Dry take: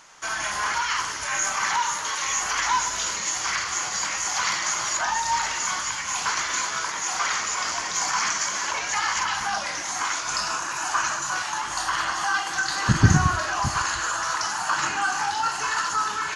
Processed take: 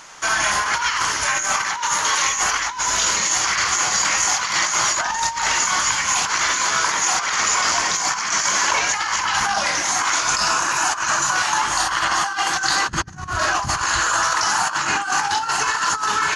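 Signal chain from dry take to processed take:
compressor whose output falls as the input rises −27 dBFS, ratio −0.5
level +7 dB

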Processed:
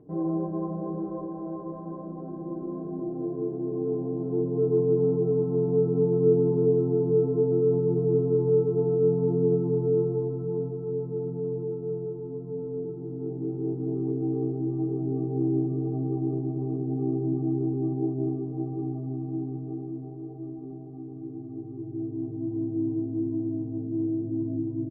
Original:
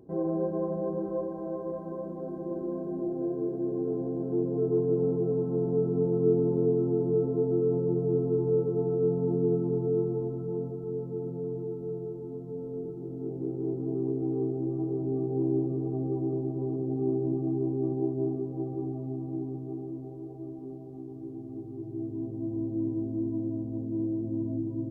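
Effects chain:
low-pass filter 1,400 Hz 12 dB per octave
comb filter 6.7 ms

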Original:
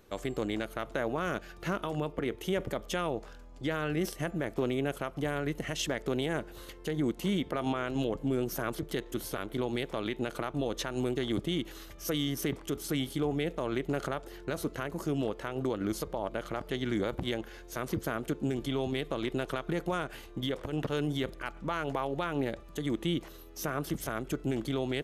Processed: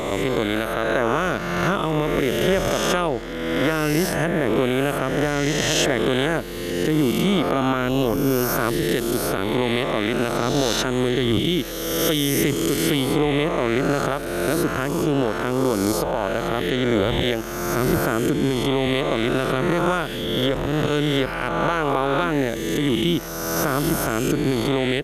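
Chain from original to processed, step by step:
peak hold with a rise ahead of every peak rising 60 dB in 1.69 s
level +8.5 dB

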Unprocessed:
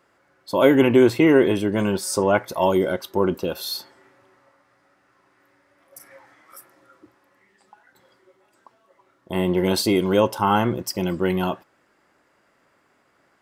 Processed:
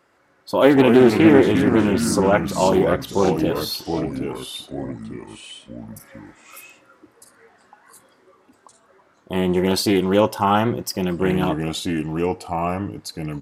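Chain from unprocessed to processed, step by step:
downsampling to 32,000 Hz
delay with pitch and tempo change per echo 126 ms, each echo −3 semitones, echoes 3, each echo −6 dB
highs frequency-modulated by the lows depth 0.28 ms
level +1.5 dB

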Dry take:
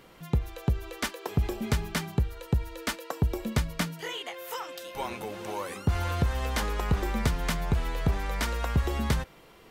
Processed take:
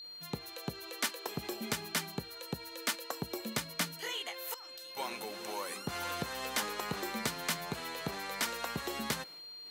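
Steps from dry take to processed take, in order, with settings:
Chebyshev high-pass filter 200 Hz, order 2
downward expander −48 dBFS
0:04.54–0:04.97: output level in coarse steps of 17 dB
spectral tilt +2 dB per octave
steady tone 4,200 Hz −45 dBFS
one half of a high-frequency compander encoder only
level −3.5 dB

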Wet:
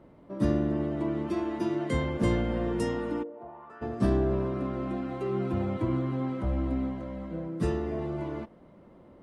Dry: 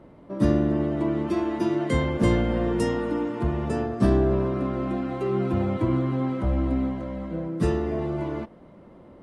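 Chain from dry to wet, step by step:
0:03.22–0:03.81: resonant band-pass 430 Hz → 1,500 Hz, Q 3.8
level −5 dB

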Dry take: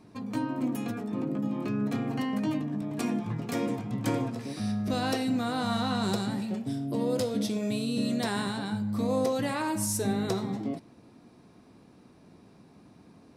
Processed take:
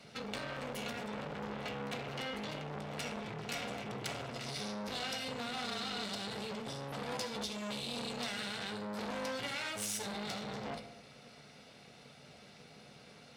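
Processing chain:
lower of the sound and its delayed copy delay 1.4 ms
meter weighting curve D
downward compressor, threshold −35 dBFS, peak gain reduction 11.5 dB
on a send at −5 dB: convolution reverb RT60 0.80 s, pre-delay 3 ms
on the sum: saturating transformer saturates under 1,900 Hz

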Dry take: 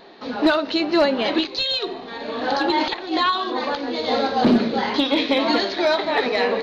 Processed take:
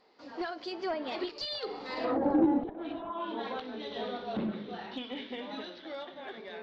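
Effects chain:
source passing by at 0:02.33, 37 m/s, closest 5.9 metres
treble cut that deepens with the level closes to 370 Hz, closed at −26.5 dBFS
in parallel at −4 dB: soft clipping −28.5 dBFS, distortion −10 dB
on the sum: healed spectral selection 0:02.91–0:03.12, 210–2,300 Hz both

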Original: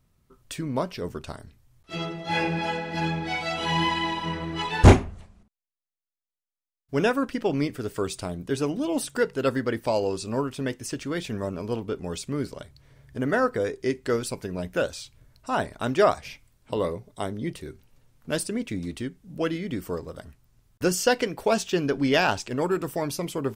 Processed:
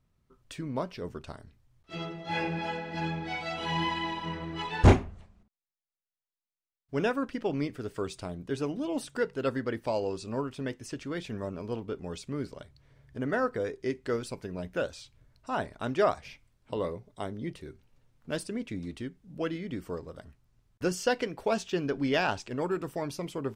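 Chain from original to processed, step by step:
high-shelf EQ 8,500 Hz −12 dB
level −5.5 dB

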